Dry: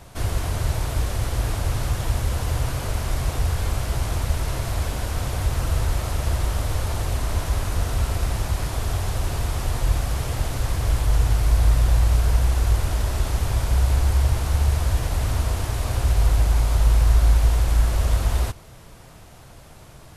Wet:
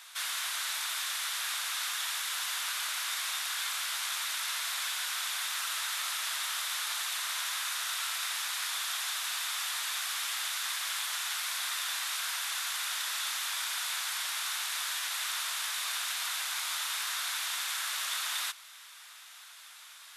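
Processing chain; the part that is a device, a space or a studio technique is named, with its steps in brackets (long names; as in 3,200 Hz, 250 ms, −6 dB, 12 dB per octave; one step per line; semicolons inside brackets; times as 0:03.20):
headphones lying on a table (high-pass filter 1,300 Hz 24 dB per octave; parametric band 3,600 Hz +7 dB 0.25 octaves)
level +2 dB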